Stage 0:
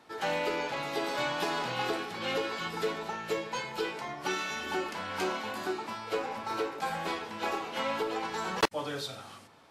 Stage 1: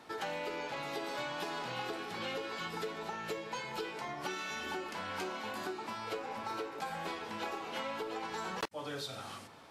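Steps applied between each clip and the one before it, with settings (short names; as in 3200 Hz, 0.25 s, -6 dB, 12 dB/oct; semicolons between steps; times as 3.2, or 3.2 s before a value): compressor 4:1, threshold -41 dBFS, peak gain reduction 16.5 dB; gain +3 dB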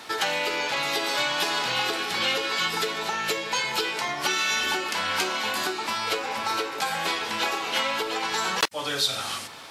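EQ curve 200 Hz 0 dB, 770 Hz +4 dB, 3700 Hz +13 dB; gain +6 dB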